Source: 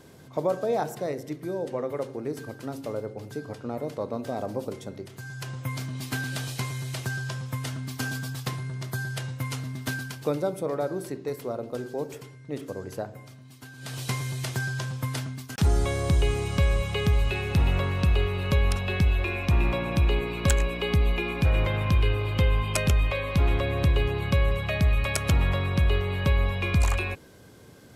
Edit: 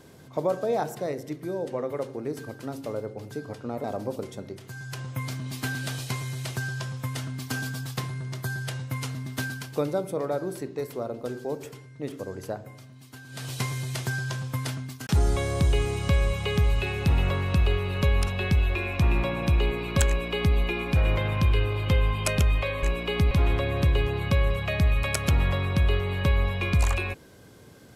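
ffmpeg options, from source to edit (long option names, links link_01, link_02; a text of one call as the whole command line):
ffmpeg -i in.wav -filter_complex "[0:a]asplit=4[link_01][link_02][link_03][link_04];[link_01]atrim=end=3.842[link_05];[link_02]atrim=start=4.328:end=23.322[link_06];[link_03]atrim=start=20.568:end=21.052[link_07];[link_04]atrim=start=23.318[link_08];[link_05][link_06]acrossfade=duration=0.004:curve1=hsin:curve2=hsin[link_09];[link_09][link_07]acrossfade=duration=0.004:curve1=hsin:curve2=hsin[link_10];[link_10][link_08]acrossfade=duration=0.004:curve1=hsin:curve2=hsin" out.wav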